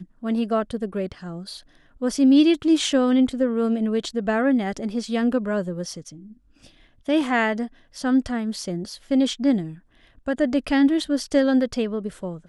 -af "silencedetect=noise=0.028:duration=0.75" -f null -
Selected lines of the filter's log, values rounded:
silence_start: 6.09
silence_end: 7.08 | silence_duration: 1.00